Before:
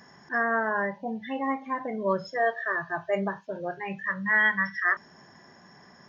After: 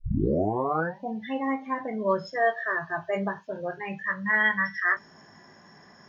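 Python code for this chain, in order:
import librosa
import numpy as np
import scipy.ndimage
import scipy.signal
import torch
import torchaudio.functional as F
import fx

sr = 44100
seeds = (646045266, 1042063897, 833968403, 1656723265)

y = fx.tape_start_head(x, sr, length_s=1.0)
y = fx.doubler(y, sr, ms=19.0, db=-8.0)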